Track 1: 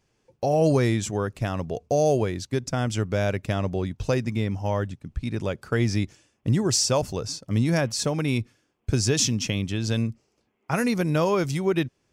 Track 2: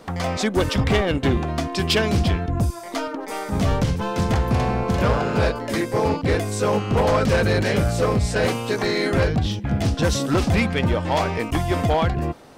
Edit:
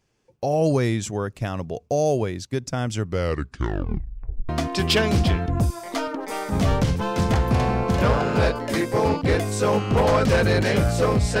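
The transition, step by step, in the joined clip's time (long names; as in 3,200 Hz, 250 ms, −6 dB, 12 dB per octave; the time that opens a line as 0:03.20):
track 1
0:03.02: tape stop 1.47 s
0:04.49: continue with track 2 from 0:01.49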